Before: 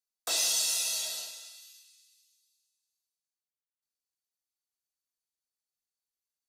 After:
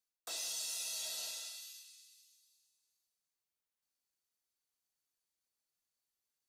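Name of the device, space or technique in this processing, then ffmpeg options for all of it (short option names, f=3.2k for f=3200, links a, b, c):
compression on the reversed sound: -af "areverse,acompressor=threshold=-42dB:ratio=5,areverse,volume=2dB"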